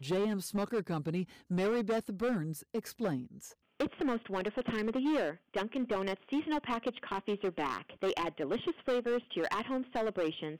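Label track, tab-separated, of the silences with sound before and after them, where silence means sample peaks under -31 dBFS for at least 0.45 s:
3.170000	3.800000	silence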